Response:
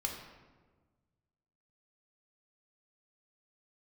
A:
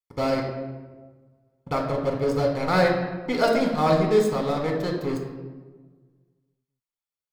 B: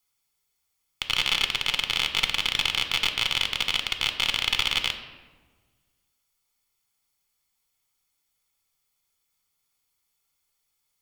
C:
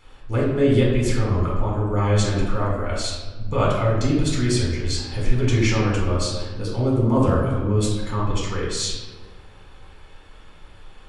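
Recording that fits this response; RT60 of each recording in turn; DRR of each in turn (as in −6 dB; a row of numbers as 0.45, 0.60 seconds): A; 1.4, 1.4, 1.4 seconds; 0.5, 6.5, −5.5 decibels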